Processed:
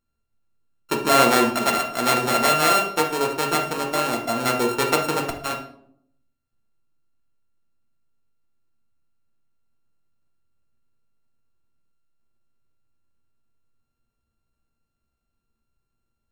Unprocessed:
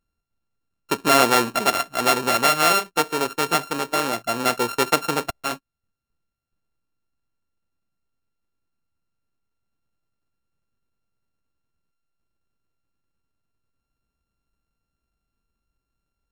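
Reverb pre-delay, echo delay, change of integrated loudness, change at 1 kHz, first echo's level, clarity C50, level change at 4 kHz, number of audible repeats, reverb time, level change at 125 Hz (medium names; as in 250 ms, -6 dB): 8 ms, no echo, 0.0 dB, 0.0 dB, no echo, 7.5 dB, -1.0 dB, no echo, 0.65 s, +2.0 dB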